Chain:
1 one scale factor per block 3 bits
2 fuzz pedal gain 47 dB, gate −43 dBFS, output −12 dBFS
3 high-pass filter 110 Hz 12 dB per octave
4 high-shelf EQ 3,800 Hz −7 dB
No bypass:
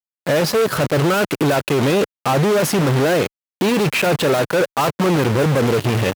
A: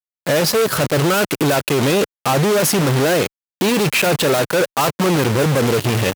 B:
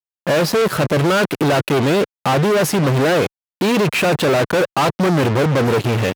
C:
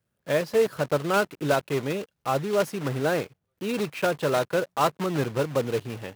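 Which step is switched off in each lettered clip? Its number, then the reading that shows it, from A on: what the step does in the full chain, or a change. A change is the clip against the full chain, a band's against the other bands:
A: 4, 8 kHz band +5.5 dB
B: 1, distortion level −11 dB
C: 2, distortion level −3 dB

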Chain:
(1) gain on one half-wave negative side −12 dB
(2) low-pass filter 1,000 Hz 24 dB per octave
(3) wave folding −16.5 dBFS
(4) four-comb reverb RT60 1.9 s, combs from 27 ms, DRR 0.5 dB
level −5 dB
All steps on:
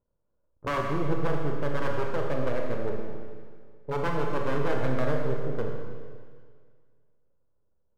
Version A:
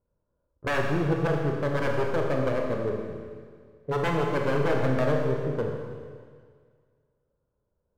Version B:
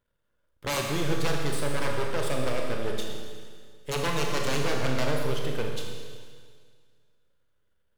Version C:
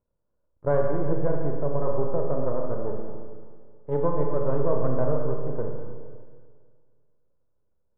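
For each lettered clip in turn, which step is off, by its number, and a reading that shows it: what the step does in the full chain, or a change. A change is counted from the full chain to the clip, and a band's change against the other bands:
1, distortion level −5 dB
2, 2 kHz band +4.0 dB
3, distortion level −2 dB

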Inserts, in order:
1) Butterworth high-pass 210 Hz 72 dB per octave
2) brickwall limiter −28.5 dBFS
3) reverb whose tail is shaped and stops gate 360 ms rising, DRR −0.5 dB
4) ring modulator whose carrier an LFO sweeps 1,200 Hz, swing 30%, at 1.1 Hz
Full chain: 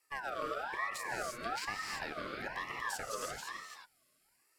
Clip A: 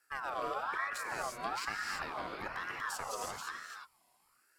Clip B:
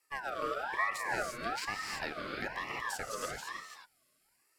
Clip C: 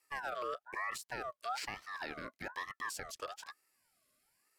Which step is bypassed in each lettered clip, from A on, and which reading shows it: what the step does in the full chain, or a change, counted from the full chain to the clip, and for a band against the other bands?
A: 1, 1 kHz band +2.5 dB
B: 2, change in crest factor +2.0 dB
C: 3, change in crest factor −2.5 dB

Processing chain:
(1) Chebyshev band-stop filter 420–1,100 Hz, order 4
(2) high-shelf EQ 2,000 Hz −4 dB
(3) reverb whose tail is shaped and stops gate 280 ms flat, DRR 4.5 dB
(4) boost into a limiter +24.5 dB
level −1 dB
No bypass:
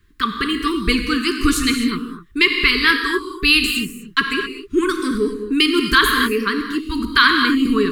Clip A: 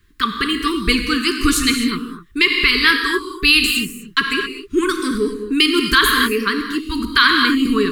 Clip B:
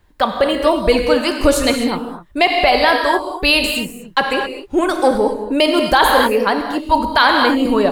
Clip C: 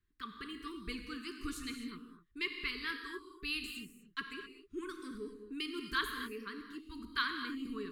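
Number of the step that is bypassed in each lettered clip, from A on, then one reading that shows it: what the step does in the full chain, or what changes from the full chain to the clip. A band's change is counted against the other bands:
2, change in integrated loudness +1.0 LU
1, 500 Hz band +9.0 dB
4, change in crest factor +4.5 dB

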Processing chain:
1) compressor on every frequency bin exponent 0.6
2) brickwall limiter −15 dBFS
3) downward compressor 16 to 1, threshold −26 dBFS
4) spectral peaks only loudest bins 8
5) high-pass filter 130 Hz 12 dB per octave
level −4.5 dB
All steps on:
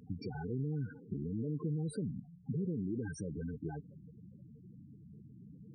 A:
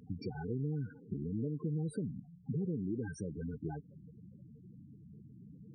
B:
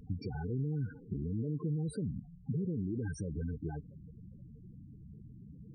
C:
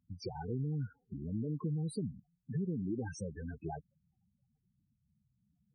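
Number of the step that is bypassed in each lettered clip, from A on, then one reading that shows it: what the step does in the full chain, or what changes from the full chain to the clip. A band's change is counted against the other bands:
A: 2, average gain reduction 1.5 dB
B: 5, 125 Hz band +2.5 dB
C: 1, 1 kHz band +5.5 dB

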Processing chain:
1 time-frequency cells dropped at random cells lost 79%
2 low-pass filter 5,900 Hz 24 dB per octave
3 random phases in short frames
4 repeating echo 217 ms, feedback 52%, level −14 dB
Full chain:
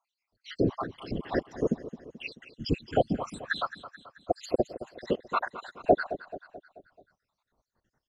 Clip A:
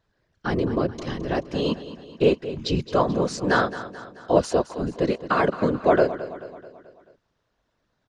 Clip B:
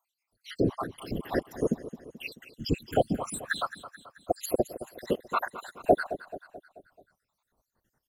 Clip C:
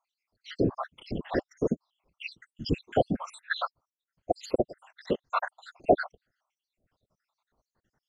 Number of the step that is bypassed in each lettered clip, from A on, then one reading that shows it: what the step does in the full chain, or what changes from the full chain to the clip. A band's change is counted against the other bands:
1, 8 kHz band +4.0 dB
2, 8 kHz band +11.0 dB
4, echo-to-direct ratio −12.5 dB to none audible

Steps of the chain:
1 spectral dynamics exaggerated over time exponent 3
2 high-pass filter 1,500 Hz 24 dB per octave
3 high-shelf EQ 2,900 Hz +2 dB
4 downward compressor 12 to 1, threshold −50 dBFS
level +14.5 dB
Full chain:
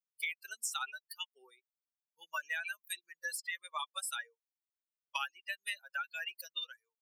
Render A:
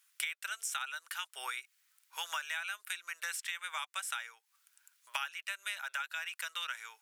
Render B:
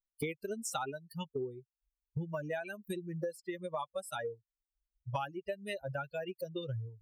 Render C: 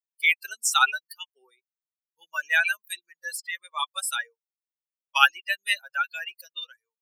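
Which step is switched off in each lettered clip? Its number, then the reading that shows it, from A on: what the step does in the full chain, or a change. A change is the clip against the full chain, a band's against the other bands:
1, change in momentary loudness spread −2 LU
2, 500 Hz band +27.5 dB
4, average gain reduction 10.5 dB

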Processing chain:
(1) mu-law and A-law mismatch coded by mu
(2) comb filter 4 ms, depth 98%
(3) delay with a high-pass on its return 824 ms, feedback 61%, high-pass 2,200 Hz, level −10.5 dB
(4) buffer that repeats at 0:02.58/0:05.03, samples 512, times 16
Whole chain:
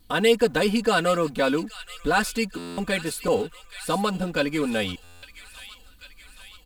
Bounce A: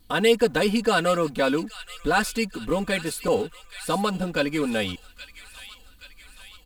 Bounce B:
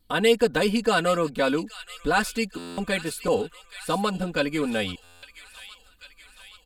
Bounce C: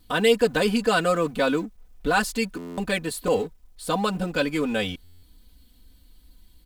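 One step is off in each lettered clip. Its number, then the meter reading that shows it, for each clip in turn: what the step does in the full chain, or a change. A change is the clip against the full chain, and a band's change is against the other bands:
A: 4, change in momentary loudness spread +4 LU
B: 1, distortion level −24 dB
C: 3, change in momentary loudness spread −6 LU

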